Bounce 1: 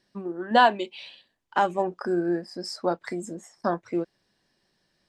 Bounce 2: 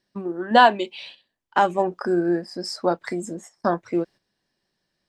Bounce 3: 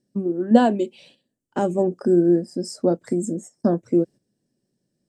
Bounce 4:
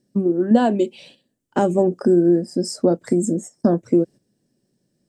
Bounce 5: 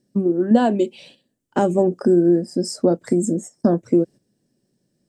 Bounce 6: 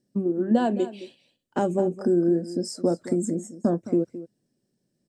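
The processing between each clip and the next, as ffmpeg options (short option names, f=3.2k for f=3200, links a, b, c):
-af "agate=range=-9dB:threshold=-46dB:ratio=16:detection=peak,volume=4dB"
-af "equalizer=f=125:t=o:w=1:g=11,equalizer=f=250:t=o:w=1:g=12,equalizer=f=500:t=o:w=1:g=7,equalizer=f=1k:t=o:w=1:g=-9,equalizer=f=2k:t=o:w=1:g=-6,equalizer=f=4k:t=o:w=1:g=-8,equalizer=f=8k:t=o:w=1:g=11,volume=-5dB"
-af "acompressor=threshold=-18dB:ratio=3,volume=5.5dB"
-af anull
-af "aecho=1:1:216:0.178,volume=-6dB"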